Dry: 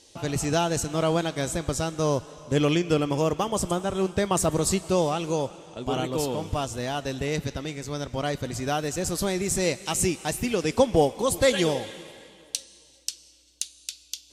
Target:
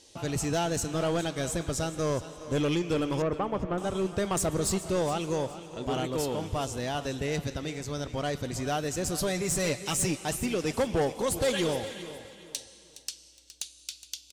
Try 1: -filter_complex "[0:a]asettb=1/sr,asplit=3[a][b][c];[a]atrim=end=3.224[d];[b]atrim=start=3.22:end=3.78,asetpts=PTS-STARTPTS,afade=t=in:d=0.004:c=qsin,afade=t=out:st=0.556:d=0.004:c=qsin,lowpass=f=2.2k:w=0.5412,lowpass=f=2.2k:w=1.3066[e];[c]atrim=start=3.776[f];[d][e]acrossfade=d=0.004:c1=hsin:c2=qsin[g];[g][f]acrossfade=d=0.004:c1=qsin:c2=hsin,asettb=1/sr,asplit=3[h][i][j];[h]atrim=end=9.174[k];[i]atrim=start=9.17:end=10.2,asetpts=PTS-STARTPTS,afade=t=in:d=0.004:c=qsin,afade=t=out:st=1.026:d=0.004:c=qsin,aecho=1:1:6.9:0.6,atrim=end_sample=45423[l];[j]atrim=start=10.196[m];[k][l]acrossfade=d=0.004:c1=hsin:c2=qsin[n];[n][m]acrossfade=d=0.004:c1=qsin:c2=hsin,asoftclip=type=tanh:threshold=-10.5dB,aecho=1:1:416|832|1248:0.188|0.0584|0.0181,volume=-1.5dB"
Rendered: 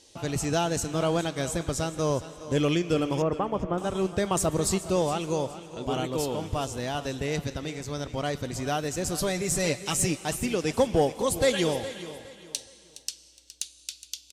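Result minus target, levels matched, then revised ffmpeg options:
soft clip: distortion -12 dB
-filter_complex "[0:a]asettb=1/sr,asplit=3[a][b][c];[a]atrim=end=3.224[d];[b]atrim=start=3.22:end=3.78,asetpts=PTS-STARTPTS,afade=t=in:d=0.004:c=qsin,afade=t=out:st=0.556:d=0.004:c=qsin,lowpass=f=2.2k:w=0.5412,lowpass=f=2.2k:w=1.3066[e];[c]atrim=start=3.776[f];[d][e]acrossfade=d=0.004:c1=hsin:c2=qsin[g];[g][f]acrossfade=d=0.004:c1=qsin:c2=hsin,asettb=1/sr,asplit=3[h][i][j];[h]atrim=end=9.174[k];[i]atrim=start=9.17:end=10.2,asetpts=PTS-STARTPTS,afade=t=in:d=0.004:c=qsin,afade=t=out:st=1.026:d=0.004:c=qsin,aecho=1:1:6.9:0.6,atrim=end_sample=45423[l];[j]atrim=start=10.196[m];[k][l]acrossfade=d=0.004:c1=hsin:c2=qsin[n];[n][m]acrossfade=d=0.004:c1=qsin:c2=hsin,asoftclip=type=tanh:threshold=-20dB,aecho=1:1:416|832|1248:0.188|0.0584|0.0181,volume=-1.5dB"

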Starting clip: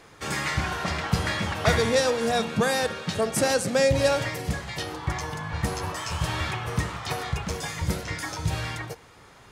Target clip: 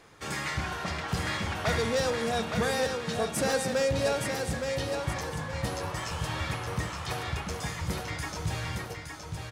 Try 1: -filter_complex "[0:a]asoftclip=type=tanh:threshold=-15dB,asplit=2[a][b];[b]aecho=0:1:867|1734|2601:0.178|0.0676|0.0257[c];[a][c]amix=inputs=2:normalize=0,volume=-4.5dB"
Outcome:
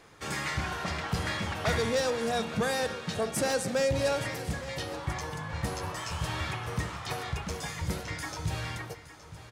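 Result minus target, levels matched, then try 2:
echo-to-direct -9.5 dB
-filter_complex "[0:a]asoftclip=type=tanh:threshold=-15dB,asplit=2[a][b];[b]aecho=0:1:867|1734|2601|3468|4335:0.531|0.202|0.0767|0.0291|0.0111[c];[a][c]amix=inputs=2:normalize=0,volume=-4.5dB"

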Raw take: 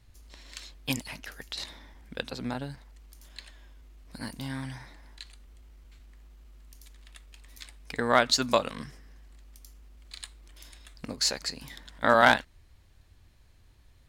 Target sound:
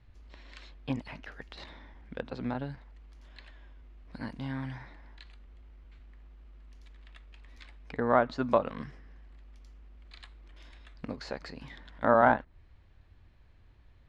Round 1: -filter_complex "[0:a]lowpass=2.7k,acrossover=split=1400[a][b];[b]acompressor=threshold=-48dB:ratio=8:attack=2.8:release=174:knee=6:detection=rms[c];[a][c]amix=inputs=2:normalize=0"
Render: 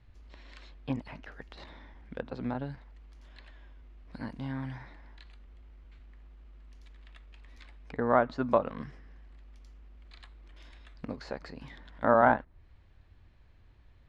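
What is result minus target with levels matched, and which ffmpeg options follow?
compressor: peak gain reduction +5 dB
-filter_complex "[0:a]lowpass=2.7k,acrossover=split=1400[a][b];[b]acompressor=threshold=-42dB:ratio=8:attack=2.8:release=174:knee=6:detection=rms[c];[a][c]amix=inputs=2:normalize=0"

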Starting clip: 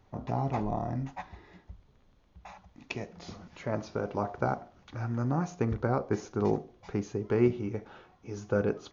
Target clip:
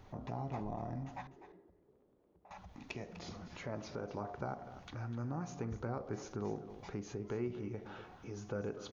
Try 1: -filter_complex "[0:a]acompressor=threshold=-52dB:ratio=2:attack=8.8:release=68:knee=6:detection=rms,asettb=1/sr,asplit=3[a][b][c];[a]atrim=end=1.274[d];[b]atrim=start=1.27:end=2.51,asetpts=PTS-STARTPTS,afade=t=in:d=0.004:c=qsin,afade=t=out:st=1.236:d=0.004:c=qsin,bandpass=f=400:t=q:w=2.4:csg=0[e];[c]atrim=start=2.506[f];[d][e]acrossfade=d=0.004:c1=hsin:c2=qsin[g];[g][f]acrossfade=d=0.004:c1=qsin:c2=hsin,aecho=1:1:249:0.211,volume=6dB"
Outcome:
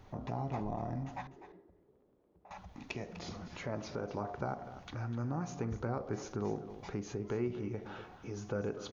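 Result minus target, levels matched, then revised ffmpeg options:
compressor: peak gain reduction -3 dB
-filter_complex "[0:a]acompressor=threshold=-58.5dB:ratio=2:attack=8.8:release=68:knee=6:detection=rms,asettb=1/sr,asplit=3[a][b][c];[a]atrim=end=1.274[d];[b]atrim=start=1.27:end=2.51,asetpts=PTS-STARTPTS,afade=t=in:d=0.004:c=qsin,afade=t=out:st=1.236:d=0.004:c=qsin,bandpass=f=400:t=q:w=2.4:csg=0[e];[c]atrim=start=2.506[f];[d][e]acrossfade=d=0.004:c1=hsin:c2=qsin[g];[g][f]acrossfade=d=0.004:c1=qsin:c2=hsin,aecho=1:1:249:0.211,volume=6dB"

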